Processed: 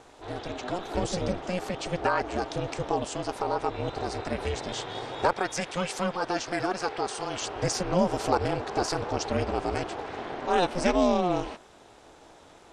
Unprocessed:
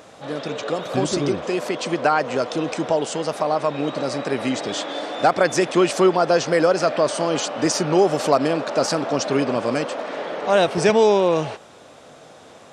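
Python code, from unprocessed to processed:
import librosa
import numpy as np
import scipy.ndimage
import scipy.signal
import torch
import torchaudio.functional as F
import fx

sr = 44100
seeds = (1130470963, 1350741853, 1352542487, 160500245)

y = fx.highpass(x, sr, hz=740.0, slope=6, at=(5.33, 7.42))
y = y * np.sin(2.0 * np.pi * 180.0 * np.arange(len(y)) / sr)
y = y * 10.0 ** (-4.5 / 20.0)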